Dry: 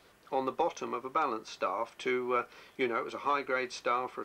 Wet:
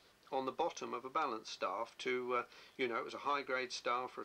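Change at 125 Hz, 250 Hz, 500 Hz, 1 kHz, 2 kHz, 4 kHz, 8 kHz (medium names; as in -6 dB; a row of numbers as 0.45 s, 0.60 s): -7.0 dB, -7.0 dB, -7.0 dB, -6.5 dB, -5.5 dB, -2.0 dB, -3.0 dB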